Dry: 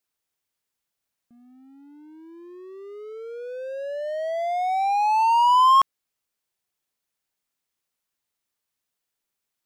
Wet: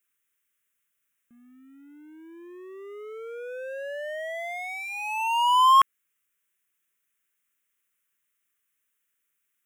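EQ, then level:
low-shelf EQ 390 Hz −12 dB
phaser with its sweep stopped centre 1,900 Hz, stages 4
+7.5 dB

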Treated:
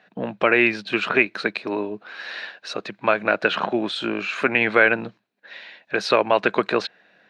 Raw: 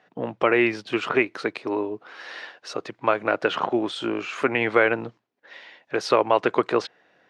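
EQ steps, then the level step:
thirty-one-band graphic EQ 200 Hz +11 dB, 630 Hz +4 dB, 1,600 Hz +8 dB, 2,500 Hz +8 dB, 4,000 Hz +10 dB
−1.0 dB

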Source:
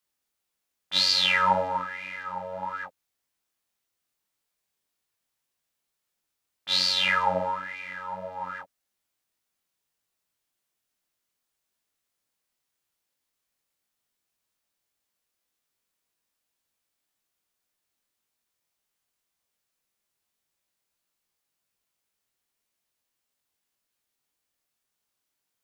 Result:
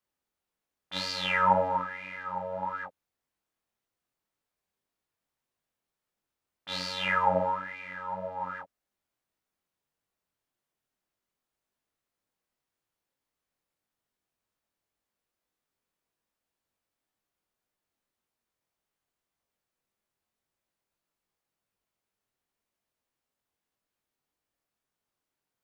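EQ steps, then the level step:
high-shelf EQ 2,100 Hz −11 dB
dynamic equaliser 4,200 Hz, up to −6 dB, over −44 dBFS, Q 1.6
+1.5 dB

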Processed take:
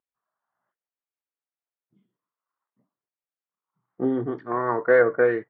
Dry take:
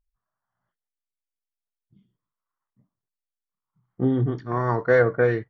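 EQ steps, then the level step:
dynamic equaliser 760 Hz, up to −4 dB, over −31 dBFS, Q 1.8
band-pass filter 320–2,100 Hz
high-frequency loss of the air 64 metres
+3.0 dB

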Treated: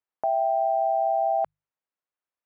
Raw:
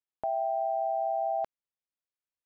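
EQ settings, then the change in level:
low-pass filter 1,300 Hz 12 dB per octave
spectral tilt +3 dB per octave
mains-hum notches 50/100/150 Hz
+8.0 dB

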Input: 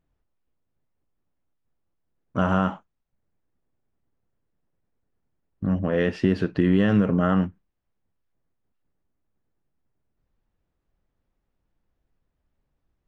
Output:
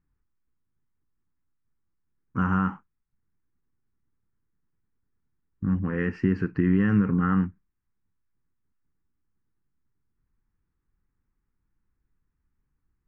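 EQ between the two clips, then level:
high-frequency loss of the air 130 metres
phaser with its sweep stopped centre 1,500 Hz, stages 4
0.0 dB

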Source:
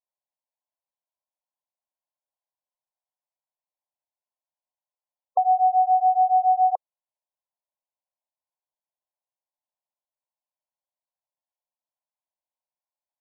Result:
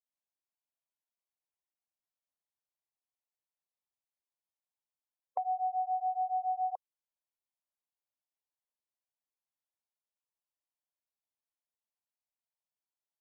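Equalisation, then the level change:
dynamic equaliser 660 Hz, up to −6 dB, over −31 dBFS, Q 0.85
−8.0 dB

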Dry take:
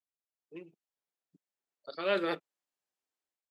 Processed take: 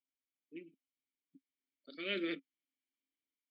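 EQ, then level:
formant filter i
+10.0 dB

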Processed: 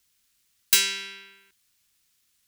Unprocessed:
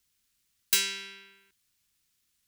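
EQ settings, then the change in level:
low-shelf EQ 400 Hz −4.5 dB
+5.5 dB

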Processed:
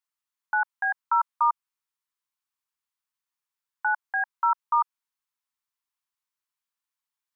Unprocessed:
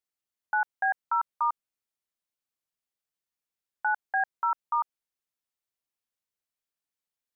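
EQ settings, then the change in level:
low shelf with overshoot 770 Hz −8 dB, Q 3
0.0 dB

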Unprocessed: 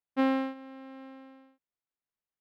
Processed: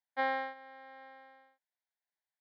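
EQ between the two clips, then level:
band-pass filter 730–3,200 Hz
phaser with its sweep stopped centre 1,800 Hz, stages 8
+5.0 dB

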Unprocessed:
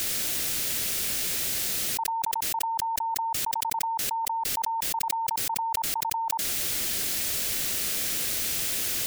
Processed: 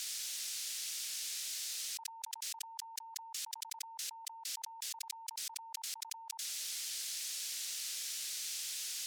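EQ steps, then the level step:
resonant band-pass 5,400 Hz, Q 0.92
−7.0 dB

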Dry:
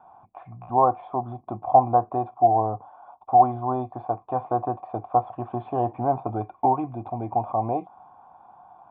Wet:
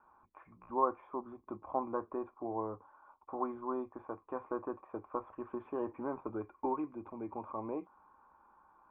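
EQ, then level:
low-pass filter 2,100 Hz 24 dB per octave
parametric band 230 Hz −9.5 dB 1.9 octaves
phaser with its sweep stopped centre 300 Hz, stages 4
0.0 dB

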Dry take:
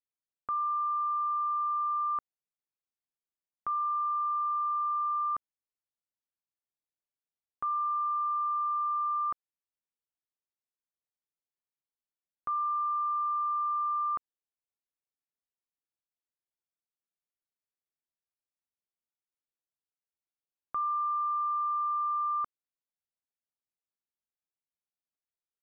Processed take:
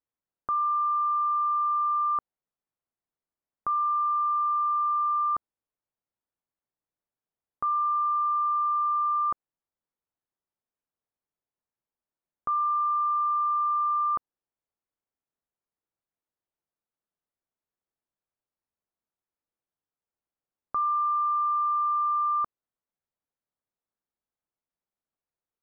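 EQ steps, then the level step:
low-pass filter 1,300 Hz 12 dB per octave
+7.0 dB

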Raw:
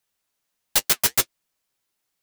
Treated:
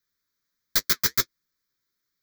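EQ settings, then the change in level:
phaser with its sweep stopped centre 2,800 Hz, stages 6
0.0 dB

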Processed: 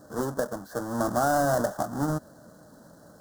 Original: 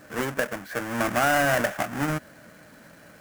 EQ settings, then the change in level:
Butterworth band-reject 2,400 Hz, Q 0.67
high-shelf EQ 9,000 Hz −5 dB
0.0 dB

